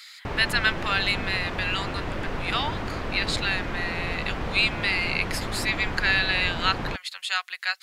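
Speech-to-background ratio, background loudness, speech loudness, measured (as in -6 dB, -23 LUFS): 6.0 dB, -32.0 LUFS, -26.0 LUFS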